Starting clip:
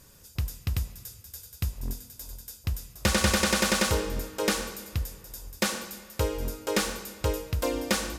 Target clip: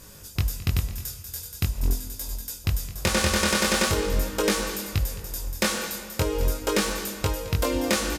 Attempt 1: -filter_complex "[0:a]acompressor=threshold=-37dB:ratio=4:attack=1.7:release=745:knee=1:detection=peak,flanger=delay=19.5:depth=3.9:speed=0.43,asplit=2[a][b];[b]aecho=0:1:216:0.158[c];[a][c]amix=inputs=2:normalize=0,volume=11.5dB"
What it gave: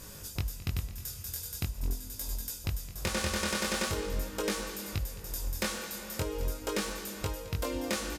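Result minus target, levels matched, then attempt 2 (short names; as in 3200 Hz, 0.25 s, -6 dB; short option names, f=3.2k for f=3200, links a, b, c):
compressor: peak gain reduction +9 dB
-filter_complex "[0:a]acompressor=threshold=-25dB:ratio=4:attack=1.7:release=745:knee=1:detection=peak,flanger=delay=19.5:depth=3.9:speed=0.43,asplit=2[a][b];[b]aecho=0:1:216:0.158[c];[a][c]amix=inputs=2:normalize=0,volume=11.5dB"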